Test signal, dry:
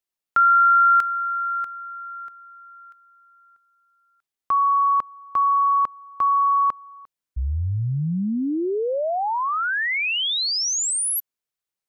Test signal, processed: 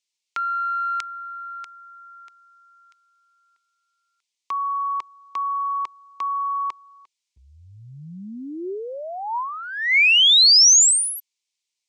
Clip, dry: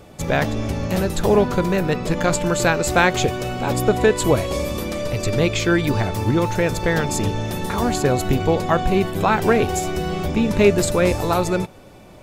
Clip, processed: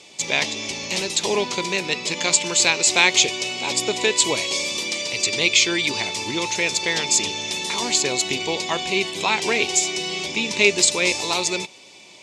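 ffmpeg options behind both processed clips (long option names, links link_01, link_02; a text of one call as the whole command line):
ffmpeg -i in.wav -af "aexciter=amount=7.8:drive=6.8:freq=2200,highpass=200,equalizer=frequency=380:width_type=q:width=4:gain=5,equalizer=frequency=960:width_type=q:width=4:gain=9,equalizer=frequency=2200:width_type=q:width=4:gain=5,lowpass=frequency=7300:width=0.5412,lowpass=frequency=7300:width=1.3066,volume=-9.5dB" out.wav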